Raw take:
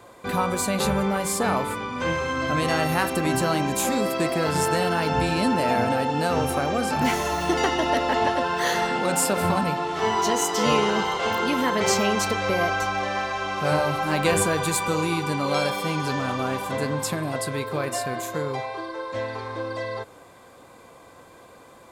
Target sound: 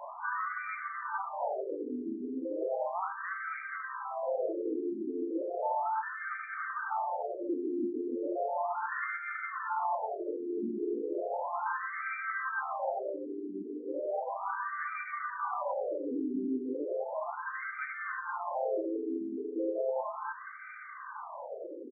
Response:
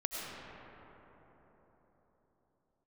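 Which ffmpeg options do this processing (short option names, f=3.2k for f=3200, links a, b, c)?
-filter_complex "[0:a]asplit=2[a][b];[b]acompressor=threshold=-30dB:ratio=6,volume=-1.5dB[c];[a][c]amix=inputs=2:normalize=0,asplit=4[d][e][f][g];[e]asetrate=35002,aresample=44100,atempo=1.25992,volume=-11dB[h];[f]asetrate=37084,aresample=44100,atempo=1.18921,volume=-12dB[i];[g]asetrate=88200,aresample=44100,atempo=0.5,volume=-13dB[j];[d][h][i][j]amix=inputs=4:normalize=0,aecho=1:1:3.3:0.31,aecho=1:1:292:0.631,alimiter=limit=-24dB:level=0:latency=1:release=89,afftfilt=real='re*between(b*sr/1024,300*pow(1700/300,0.5+0.5*sin(2*PI*0.35*pts/sr))/1.41,300*pow(1700/300,0.5+0.5*sin(2*PI*0.35*pts/sr))*1.41)':imag='im*between(b*sr/1024,300*pow(1700/300,0.5+0.5*sin(2*PI*0.35*pts/sr))/1.41,300*pow(1700/300,0.5+0.5*sin(2*PI*0.35*pts/sr))*1.41)':win_size=1024:overlap=0.75,volume=3.5dB"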